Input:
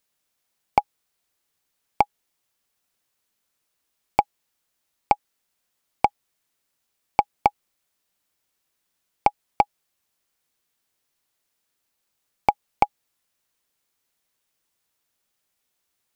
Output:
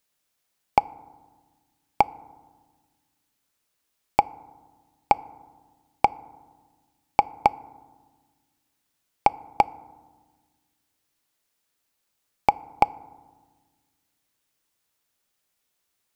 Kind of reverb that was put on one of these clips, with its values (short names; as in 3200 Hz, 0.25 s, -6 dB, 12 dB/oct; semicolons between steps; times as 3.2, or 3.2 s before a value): FDN reverb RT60 1.4 s, low-frequency decay 1.55×, high-frequency decay 0.35×, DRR 19 dB